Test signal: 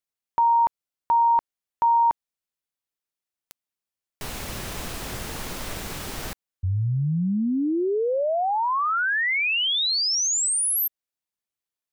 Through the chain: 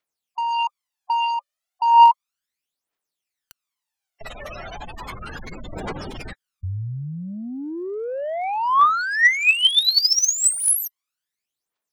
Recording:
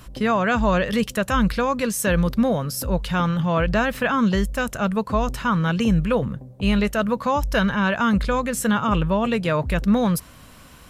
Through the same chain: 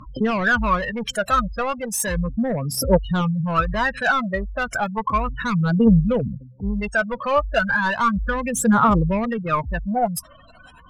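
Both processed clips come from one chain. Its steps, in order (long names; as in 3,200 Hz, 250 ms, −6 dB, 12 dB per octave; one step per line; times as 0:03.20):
gate on every frequency bin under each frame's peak −15 dB strong
mid-hump overdrive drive 15 dB, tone 7,200 Hz, clips at −8.5 dBFS
phase shifter 0.34 Hz, delay 1.7 ms, feedback 71%
level −4.5 dB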